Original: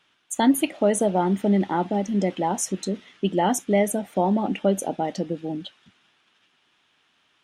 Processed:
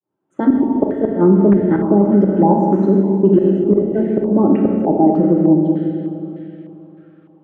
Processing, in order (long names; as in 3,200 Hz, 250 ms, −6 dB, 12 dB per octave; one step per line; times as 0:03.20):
fade in at the beginning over 0.66 s
high-pass filter 85 Hz 24 dB per octave
notch comb filter 240 Hz
gate with flip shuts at −13 dBFS, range −26 dB
low shelf with overshoot 580 Hz +13.5 dB, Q 1.5
four-comb reverb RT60 3.1 s, combs from 28 ms, DRR 0.5 dB
harmonic generator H 5 −42 dB, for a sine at 3.5 dBFS
boost into a limiter +1.5 dB
low-pass on a step sequencer 3.3 Hz 880–1,800 Hz
level −3 dB